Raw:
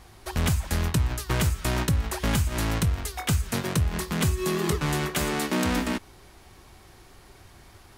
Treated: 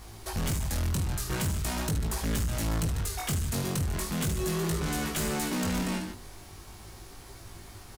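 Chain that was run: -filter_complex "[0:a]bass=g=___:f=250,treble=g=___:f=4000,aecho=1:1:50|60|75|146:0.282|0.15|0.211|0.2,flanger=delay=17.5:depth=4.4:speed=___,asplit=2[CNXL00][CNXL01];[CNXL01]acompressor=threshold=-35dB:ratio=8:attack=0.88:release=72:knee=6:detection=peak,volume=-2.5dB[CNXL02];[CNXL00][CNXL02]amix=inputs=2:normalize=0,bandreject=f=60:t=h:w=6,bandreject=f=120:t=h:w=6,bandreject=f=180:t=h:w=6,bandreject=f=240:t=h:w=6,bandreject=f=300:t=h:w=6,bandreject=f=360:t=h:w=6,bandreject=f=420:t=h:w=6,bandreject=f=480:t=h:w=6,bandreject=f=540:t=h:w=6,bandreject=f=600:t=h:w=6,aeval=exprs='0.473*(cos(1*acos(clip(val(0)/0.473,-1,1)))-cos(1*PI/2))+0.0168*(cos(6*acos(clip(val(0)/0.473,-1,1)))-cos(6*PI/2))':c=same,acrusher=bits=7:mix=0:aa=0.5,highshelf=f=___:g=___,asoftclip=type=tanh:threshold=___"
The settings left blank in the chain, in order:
3, 14, 0.41, 3300, -10, -25dB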